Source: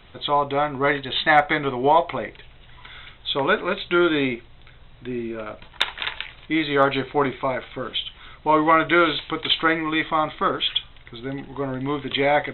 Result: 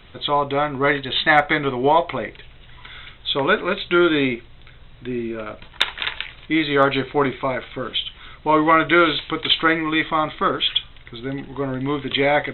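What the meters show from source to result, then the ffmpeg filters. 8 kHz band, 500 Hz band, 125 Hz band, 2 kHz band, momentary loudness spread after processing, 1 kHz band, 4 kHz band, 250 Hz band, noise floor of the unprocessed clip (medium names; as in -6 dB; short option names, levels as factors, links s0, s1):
no reading, +2.0 dB, +3.0 dB, +2.5 dB, 15 LU, +1.0 dB, +3.0 dB, +2.5 dB, -48 dBFS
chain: -af "equalizer=f=790:t=o:w=0.86:g=-3.5,volume=1.41"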